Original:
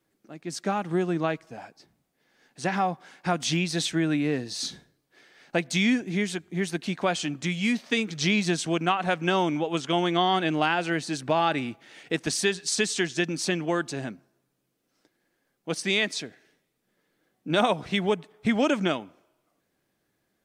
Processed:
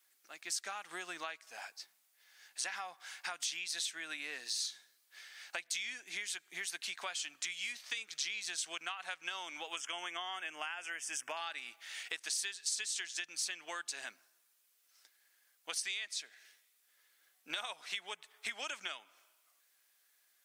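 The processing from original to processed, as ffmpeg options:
-filter_complex "[0:a]asettb=1/sr,asplit=3[a][b][c];[a]atrim=end=9.764[d];[b]atrim=start=9.76:end=11.37,asetpts=PTS-STARTPTS,afade=t=in:d=0.004:c=qsin,afade=t=out:st=1.606:d=0.004:c=qsin,asuperstop=centerf=4100:order=4:qfactor=1.8[e];[c]atrim=start=11.366[f];[d][e]acrossfade=d=0.004:c1=hsin:c2=qsin[g];[g][f]acrossfade=d=0.004:c1=qsin:c2=hsin,highpass=1.4k,acompressor=threshold=-43dB:ratio=6,highshelf=f=5.7k:g=9,volume=3dB"

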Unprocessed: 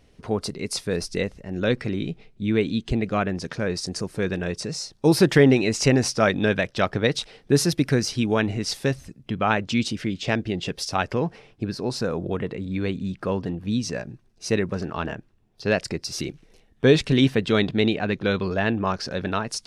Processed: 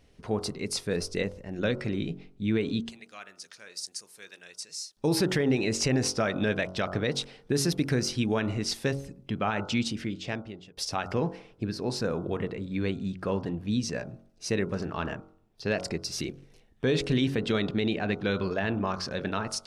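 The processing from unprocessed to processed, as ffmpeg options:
-filter_complex "[0:a]asettb=1/sr,asplit=3[a][b][c];[a]atrim=end=2.894[d];[b]atrim=start=2.89:end=4.97,asetpts=PTS-STARTPTS,afade=t=in:d=0.004:c=qsin,afade=t=out:st=2.076:d=0.004:c=qsin,aderivative[e];[c]atrim=start=4.966[f];[d][e]acrossfade=d=0.004:c1=hsin:c2=qsin[g];[g][f]acrossfade=d=0.004:c1=qsin:c2=hsin,asplit=2[h][i];[h]atrim=end=10.77,asetpts=PTS-STARTPTS,afade=t=out:st=9.83:d=0.94[j];[i]atrim=start=10.77,asetpts=PTS-STARTPTS,afade=t=in:d=0.004:c=hsin[k];[j][k]concat=n=2:v=0:a=1,bandreject=f=46.05:t=h:w=4,bandreject=f=92.1:t=h:w=4,bandreject=f=138.15:t=h:w=4,bandreject=f=184.2:t=h:w=4,bandreject=f=230.25:t=h:w=4,bandreject=f=276.3:t=h:w=4,bandreject=f=322.35:t=h:w=4,bandreject=f=368.4:t=h:w=4,bandreject=f=414.45:t=h:w=4,bandreject=f=460.5:t=h:w=4,bandreject=f=506.55:t=h:w=4,bandreject=f=552.6:t=h:w=4,bandreject=f=598.65:t=h:w=4,bandreject=f=644.7:t=h:w=4,bandreject=f=690.75:t=h:w=4,bandreject=f=736.8:t=h:w=4,bandreject=f=782.85:t=h:w=4,bandreject=f=828.9:t=h:w=4,bandreject=f=874.95:t=h:w=4,bandreject=f=921:t=h:w=4,bandreject=f=967.05:t=h:w=4,bandreject=f=1.0131k:t=h:w=4,bandreject=f=1.05915k:t=h:w=4,bandreject=f=1.1052k:t=h:w=4,bandreject=f=1.15125k:t=h:w=4,bandreject=f=1.1973k:t=h:w=4,bandreject=f=1.24335k:t=h:w=4,bandreject=f=1.2894k:t=h:w=4,bandreject=f=1.33545k:t=h:w=4,bandreject=f=1.3815k:t=h:w=4,bandreject=f=1.42755k:t=h:w=4,bandreject=f=1.4736k:t=h:w=4,alimiter=limit=-13.5dB:level=0:latency=1:release=76,volume=-3dB"

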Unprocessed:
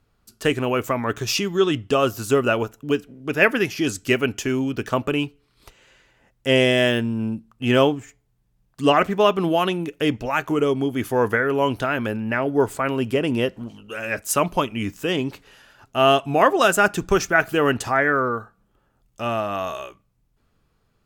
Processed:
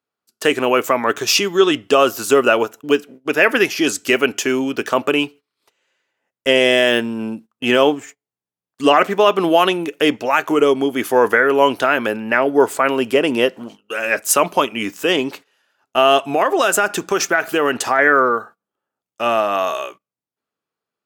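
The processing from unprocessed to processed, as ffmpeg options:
-filter_complex "[0:a]asettb=1/sr,asplit=3[a][b][c];[a]atrim=end=16.314[d];[b]atrim=start=16.31:end=17.99,asetpts=PTS-STARTPTS,afade=t=in:d=0.004:c=qsin,afade=t=out:st=1.676:d=0.004:c=qsin,acompressor=threshold=-18dB:ratio=12:attack=3.2:release=140:knee=1:detection=peak[e];[c]atrim=start=17.986[f];[d][e]acrossfade=d=0.004:c1=hsin:c2=qsin[g];[g][f]acrossfade=d=0.004:c1=qsin:c2=hsin,highpass=330,agate=range=-21dB:threshold=-44dB:ratio=16:detection=peak,alimiter=level_in=9dB:limit=-1dB:release=50:level=0:latency=1,volume=-1dB"

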